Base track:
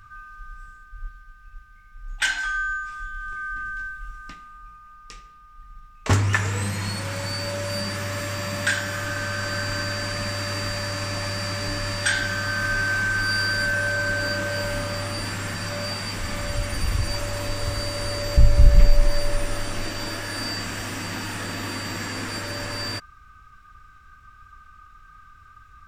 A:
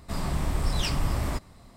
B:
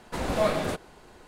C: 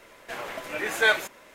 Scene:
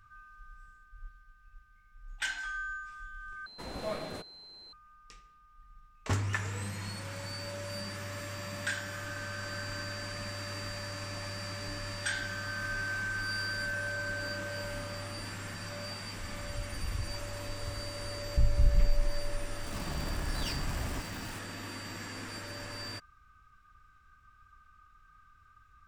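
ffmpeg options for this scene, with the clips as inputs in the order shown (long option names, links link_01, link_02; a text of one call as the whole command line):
ffmpeg -i bed.wav -i cue0.wav -i cue1.wav -filter_complex "[0:a]volume=-11.5dB[link_01];[2:a]aeval=exprs='val(0)+0.0141*sin(2*PI*4100*n/s)':channel_layout=same[link_02];[1:a]aeval=exprs='val(0)+0.5*0.0355*sgn(val(0))':channel_layout=same[link_03];[link_01]asplit=2[link_04][link_05];[link_04]atrim=end=3.464[link_06];[link_02]atrim=end=1.27,asetpts=PTS-STARTPTS,volume=-12dB[link_07];[link_05]atrim=start=4.726[link_08];[link_03]atrim=end=1.76,asetpts=PTS-STARTPTS,volume=-11dB,afade=type=in:duration=0.004:curve=hsin,afade=type=out:start_time=1.756:duration=0.004:curve=hsin,adelay=19630[link_09];[link_06][link_07]acrossfade=duration=0.004:curve1=hsin:curve2=hsin[link_10];[link_10][link_08]acrossfade=duration=0.004:curve1=hsin:curve2=hsin[link_11];[link_11][link_09]amix=inputs=2:normalize=0" out.wav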